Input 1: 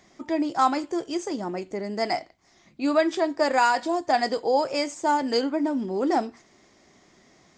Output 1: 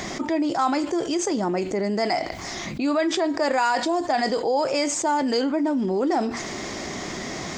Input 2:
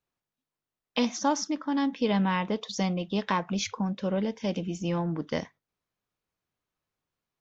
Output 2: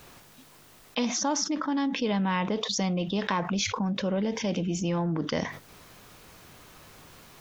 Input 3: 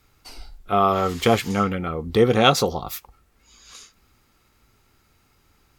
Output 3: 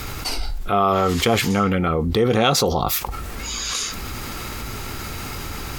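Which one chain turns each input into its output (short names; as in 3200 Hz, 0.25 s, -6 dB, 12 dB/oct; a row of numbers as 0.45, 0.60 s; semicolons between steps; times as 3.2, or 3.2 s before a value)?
fast leveller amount 70%; gain -3.5 dB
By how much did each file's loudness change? +1.0, +1.0, -1.5 LU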